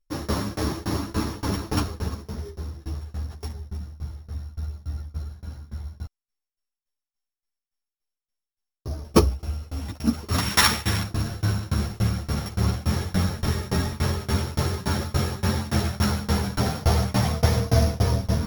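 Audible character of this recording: a buzz of ramps at a fixed pitch in blocks of 8 samples; tremolo saw down 3.5 Hz, depth 100%; a shimmering, thickened sound

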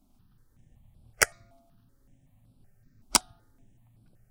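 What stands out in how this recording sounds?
notches that jump at a steady rate 5.3 Hz 480–6500 Hz

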